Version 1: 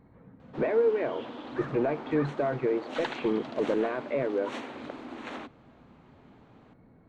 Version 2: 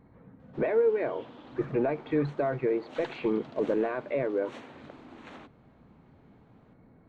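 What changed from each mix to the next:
background −8.0 dB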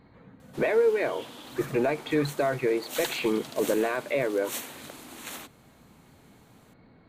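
master: remove head-to-tape spacing loss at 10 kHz 40 dB

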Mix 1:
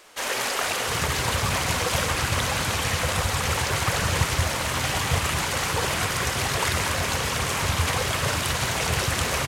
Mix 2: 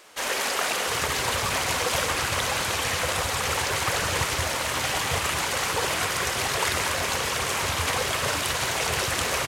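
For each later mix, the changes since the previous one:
speech: muted
second sound −7.5 dB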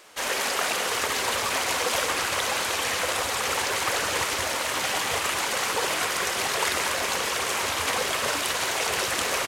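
second sound −11.5 dB

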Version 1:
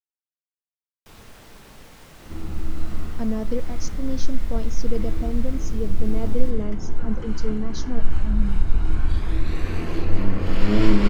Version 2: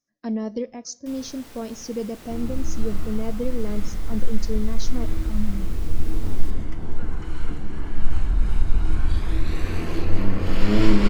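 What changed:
speech: entry −2.95 s
master: add high-shelf EQ 5,300 Hz +5 dB

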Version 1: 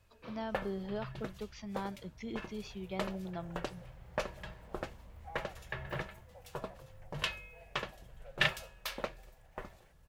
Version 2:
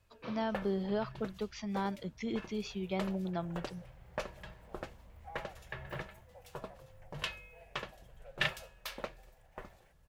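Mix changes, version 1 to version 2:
speech +5.0 dB
first sound −3.0 dB

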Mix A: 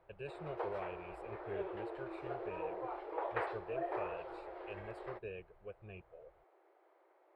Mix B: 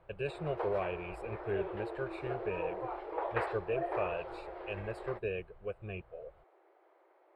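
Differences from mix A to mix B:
speech +9.5 dB
background +3.0 dB

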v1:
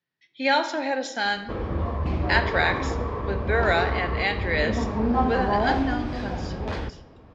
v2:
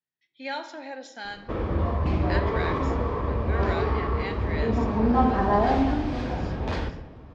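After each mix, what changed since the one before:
speech −11.5 dB
background: send +8.5 dB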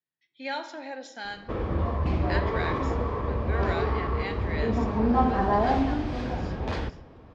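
background: send −8.5 dB

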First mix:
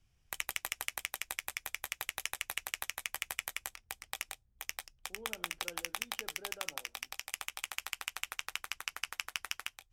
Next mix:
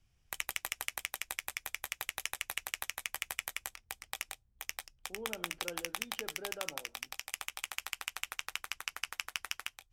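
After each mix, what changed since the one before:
speech +6.0 dB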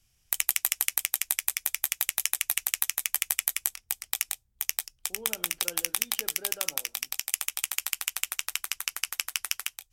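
master: remove low-pass filter 1,600 Hz 6 dB per octave

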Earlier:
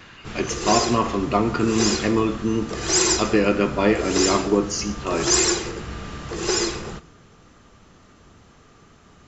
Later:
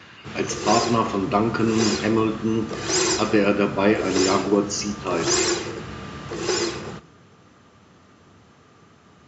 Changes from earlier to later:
background: add high-frequency loss of the air 52 metres
master: add high-pass filter 83 Hz 24 dB per octave

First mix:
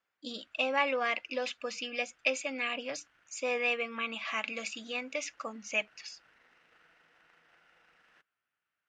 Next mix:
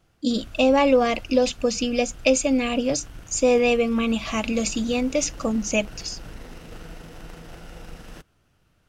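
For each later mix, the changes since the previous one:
background +12.0 dB
master: remove resonant band-pass 1,800 Hz, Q 1.7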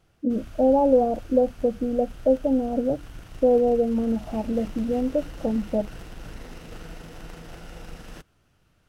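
speech: add Chebyshev low-pass filter 850 Hz, order 5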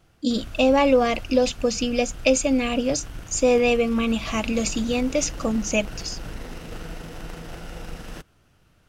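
speech: remove Chebyshev low-pass filter 850 Hz, order 5
background +4.5 dB

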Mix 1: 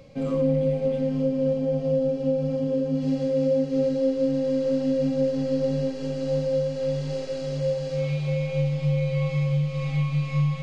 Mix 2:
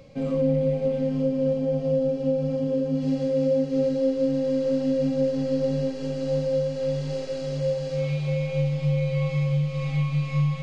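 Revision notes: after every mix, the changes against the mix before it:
reverb: off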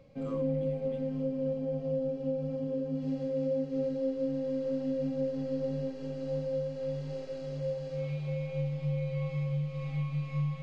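background −8.5 dB
master: add high-shelf EQ 3,500 Hz −8.5 dB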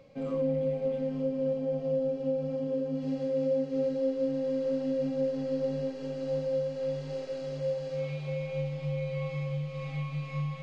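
background +4.5 dB
master: add low-shelf EQ 200 Hz −9.5 dB

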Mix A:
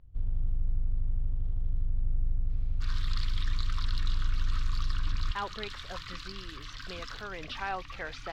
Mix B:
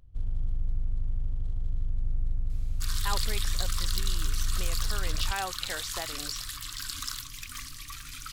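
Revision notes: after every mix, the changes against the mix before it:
speech: entry −2.30 s
master: remove high-frequency loss of the air 240 metres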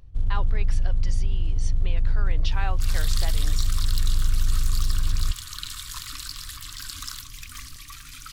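speech: entry −2.75 s
first sound +7.5 dB

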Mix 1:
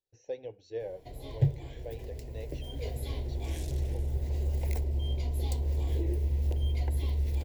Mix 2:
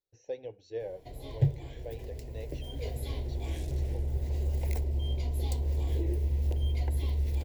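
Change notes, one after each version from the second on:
second sound −5.5 dB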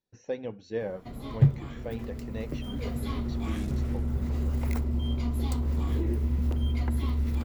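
speech +4.0 dB
master: remove phaser with its sweep stopped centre 520 Hz, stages 4

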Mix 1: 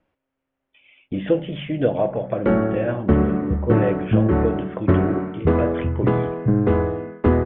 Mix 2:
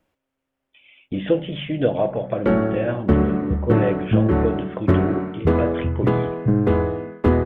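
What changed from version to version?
master: remove low-pass filter 2,900 Hz 12 dB per octave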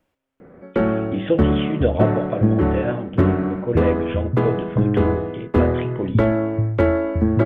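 background: entry −1.70 s

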